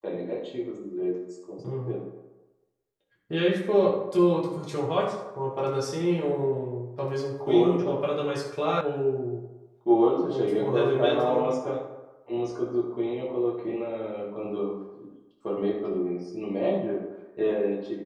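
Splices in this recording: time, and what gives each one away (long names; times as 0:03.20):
0:08.81: cut off before it has died away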